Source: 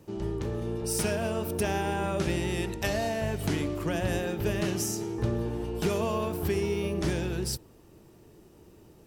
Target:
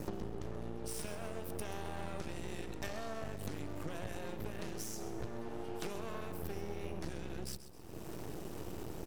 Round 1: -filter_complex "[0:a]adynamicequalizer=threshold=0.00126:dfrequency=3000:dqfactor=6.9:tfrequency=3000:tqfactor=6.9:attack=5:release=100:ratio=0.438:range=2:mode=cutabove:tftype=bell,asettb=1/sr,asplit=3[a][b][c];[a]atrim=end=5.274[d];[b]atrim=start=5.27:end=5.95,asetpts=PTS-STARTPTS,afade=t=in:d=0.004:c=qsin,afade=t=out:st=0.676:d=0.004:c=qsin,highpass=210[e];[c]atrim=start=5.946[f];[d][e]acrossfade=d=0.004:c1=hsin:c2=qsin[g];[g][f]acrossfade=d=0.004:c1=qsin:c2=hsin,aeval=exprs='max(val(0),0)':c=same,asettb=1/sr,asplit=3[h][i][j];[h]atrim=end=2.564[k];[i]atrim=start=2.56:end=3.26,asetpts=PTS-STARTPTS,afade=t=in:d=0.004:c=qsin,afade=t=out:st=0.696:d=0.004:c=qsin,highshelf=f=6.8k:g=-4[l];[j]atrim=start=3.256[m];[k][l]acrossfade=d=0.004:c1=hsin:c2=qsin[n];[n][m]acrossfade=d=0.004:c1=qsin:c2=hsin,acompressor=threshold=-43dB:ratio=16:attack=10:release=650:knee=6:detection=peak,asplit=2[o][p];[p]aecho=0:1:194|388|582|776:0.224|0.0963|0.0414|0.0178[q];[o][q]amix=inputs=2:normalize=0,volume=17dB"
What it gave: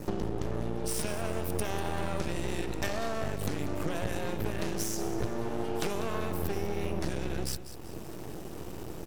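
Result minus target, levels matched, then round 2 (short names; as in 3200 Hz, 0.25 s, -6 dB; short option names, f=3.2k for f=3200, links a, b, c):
echo 62 ms late; compressor: peak gain reduction -9.5 dB
-filter_complex "[0:a]adynamicequalizer=threshold=0.00126:dfrequency=3000:dqfactor=6.9:tfrequency=3000:tqfactor=6.9:attack=5:release=100:ratio=0.438:range=2:mode=cutabove:tftype=bell,asettb=1/sr,asplit=3[a][b][c];[a]atrim=end=5.274[d];[b]atrim=start=5.27:end=5.95,asetpts=PTS-STARTPTS,afade=t=in:d=0.004:c=qsin,afade=t=out:st=0.676:d=0.004:c=qsin,highpass=210[e];[c]atrim=start=5.946[f];[d][e]acrossfade=d=0.004:c1=hsin:c2=qsin[g];[g][f]acrossfade=d=0.004:c1=qsin:c2=hsin,aeval=exprs='max(val(0),0)':c=same,asettb=1/sr,asplit=3[h][i][j];[h]atrim=end=2.564[k];[i]atrim=start=2.56:end=3.26,asetpts=PTS-STARTPTS,afade=t=in:d=0.004:c=qsin,afade=t=out:st=0.696:d=0.004:c=qsin,highshelf=f=6.8k:g=-4[l];[j]atrim=start=3.256[m];[k][l]acrossfade=d=0.004:c1=hsin:c2=qsin[n];[n][m]acrossfade=d=0.004:c1=qsin:c2=hsin,acompressor=threshold=-53dB:ratio=16:attack=10:release=650:knee=6:detection=peak,asplit=2[o][p];[p]aecho=0:1:132|264|396|528:0.224|0.0963|0.0414|0.0178[q];[o][q]amix=inputs=2:normalize=0,volume=17dB"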